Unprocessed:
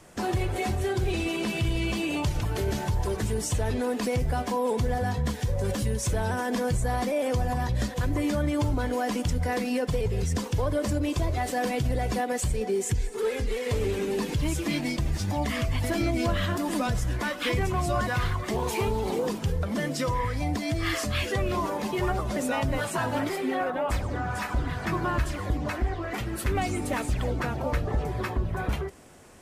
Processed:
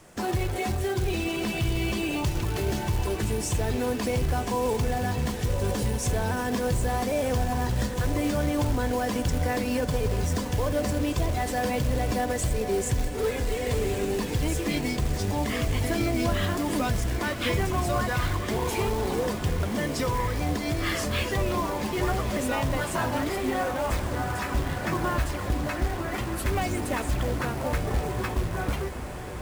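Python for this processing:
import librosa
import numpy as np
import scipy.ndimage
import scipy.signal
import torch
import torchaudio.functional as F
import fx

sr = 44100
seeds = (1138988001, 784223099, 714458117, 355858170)

y = fx.quant_float(x, sr, bits=2)
y = fx.echo_diffused(y, sr, ms=1175, feedback_pct=74, wet_db=-11.0)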